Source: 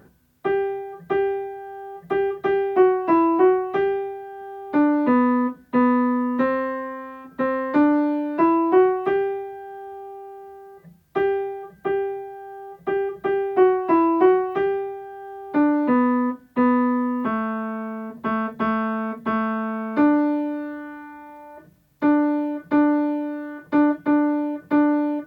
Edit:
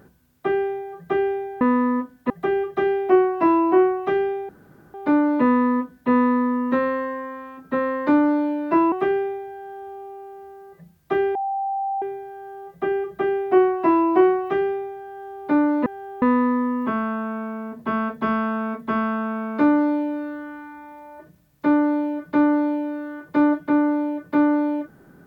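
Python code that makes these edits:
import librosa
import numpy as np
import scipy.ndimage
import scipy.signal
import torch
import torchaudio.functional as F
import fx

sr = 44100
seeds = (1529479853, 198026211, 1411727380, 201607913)

y = fx.edit(x, sr, fx.swap(start_s=1.61, length_s=0.36, other_s=15.91, other_length_s=0.69),
    fx.room_tone_fill(start_s=4.16, length_s=0.45),
    fx.cut(start_s=8.59, length_s=0.38),
    fx.bleep(start_s=11.4, length_s=0.67, hz=784.0, db=-22.0), tone=tone)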